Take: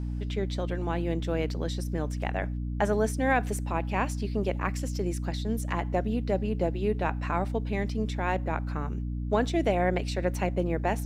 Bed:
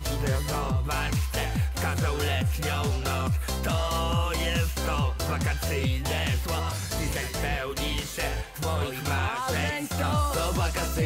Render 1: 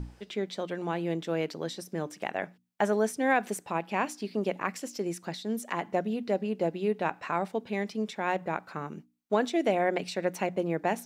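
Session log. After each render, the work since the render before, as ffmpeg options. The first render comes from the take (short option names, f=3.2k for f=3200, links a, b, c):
-af "bandreject=f=60:t=h:w=6,bandreject=f=120:t=h:w=6,bandreject=f=180:t=h:w=6,bandreject=f=240:t=h:w=6,bandreject=f=300:t=h:w=6"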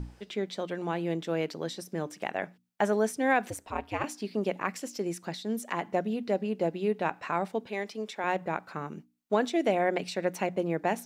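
-filter_complex "[0:a]asettb=1/sr,asplit=3[a][b][c];[a]atrim=end=3.504[d];[b]atrim=start=3.5:end=4.04,asetpts=PTS-STARTPTS,afade=t=in:d=0.004:c=qsin,afade=t=out:st=0.536:d=0.004:c=qsin,aeval=exprs='val(0)*sin(2*PI*100*n/s)':c=same[e];[c]atrim=start=4.036[f];[d][e]acrossfade=d=0.004:c1=hsin:c2=qsin[g];[g][f]acrossfade=d=0.004:c1=qsin:c2=hsin,asettb=1/sr,asplit=3[h][i][j];[h]atrim=end=7.674[k];[i]atrim=start=7.67:end=8.24,asetpts=PTS-STARTPTS,afade=t=in:d=0.004:c=qsin,afade=t=out:st=0.566:d=0.004:c=qsin,highpass=320[l];[j]atrim=start=8.236[m];[k][l]acrossfade=d=0.004:c1=hsin:c2=qsin[n];[n][m]acrossfade=d=0.004:c1=qsin:c2=hsin"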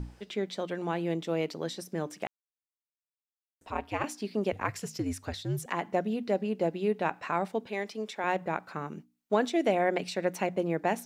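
-filter_complex "[0:a]asettb=1/sr,asplit=3[a][b][c];[a]atrim=end=1.144[d];[b]atrim=start=1.14:end=1.55,asetpts=PTS-STARTPTS,afade=t=in:d=0.004:c=qsin,afade=t=out:st=0.406:d=0.004:c=qsin,equalizer=f=1.6k:w=7.4:g=-10.5[e];[c]atrim=start=1.546[f];[d][e]acrossfade=d=0.004:c1=hsin:c2=qsin[g];[g][f]acrossfade=d=0.004:c1=qsin:c2=hsin,asettb=1/sr,asplit=3[h][i][j];[h]atrim=end=4.524[k];[i]atrim=start=4.52:end=5.66,asetpts=PTS-STARTPTS,afade=t=in:d=0.004:c=qsin,afade=t=out:st=1.136:d=0.004:c=qsin,afreqshift=-83[l];[j]atrim=start=5.656[m];[k][l]acrossfade=d=0.004:c1=hsin:c2=qsin[n];[n][m]acrossfade=d=0.004:c1=qsin:c2=hsin,asplit=3[o][p][q];[o]atrim=end=2.27,asetpts=PTS-STARTPTS,afade=t=out:st=2.266:d=0.004:c=hsin[r];[p]atrim=start=2.27:end=3.61,asetpts=PTS-STARTPTS,volume=0[s];[q]atrim=start=3.61,asetpts=PTS-STARTPTS,afade=t=in:d=0.004:c=hsin[t];[r][s][t]concat=n=3:v=0:a=1"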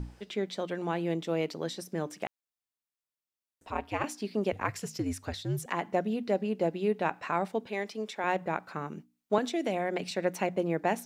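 -filter_complex "[0:a]asettb=1/sr,asplit=3[a][b][c];[a]atrim=end=9.384[d];[b]atrim=start=9.38:end=10.11,asetpts=PTS-STARTPTS,afade=t=in:d=0.004:c=qsin,afade=t=out:st=0.726:d=0.004:c=qsin,acrossover=split=210|3000[e][f][g];[f]acompressor=threshold=-27dB:ratio=6:attack=3.2:release=140:knee=2.83:detection=peak[h];[e][h][g]amix=inputs=3:normalize=0[i];[c]atrim=start=10.106[j];[d][i]acrossfade=d=0.004:c1=hsin:c2=qsin[k];[k][j]acrossfade=d=0.004:c1=qsin:c2=hsin"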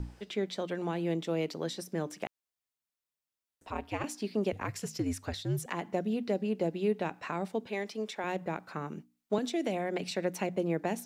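-filter_complex "[0:a]acrossover=split=460|3000[a][b][c];[b]acompressor=threshold=-35dB:ratio=6[d];[a][d][c]amix=inputs=3:normalize=0"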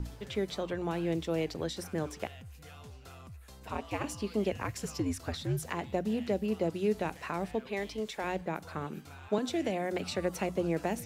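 -filter_complex "[1:a]volume=-22.5dB[a];[0:a][a]amix=inputs=2:normalize=0"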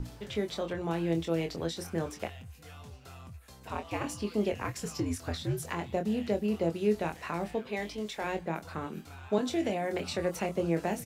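-filter_complex "[0:a]asplit=2[a][b];[b]adelay=24,volume=-6.5dB[c];[a][c]amix=inputs=2:normalize=0"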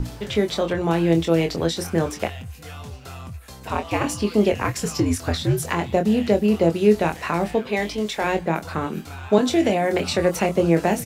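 -af "volume=11.5dB"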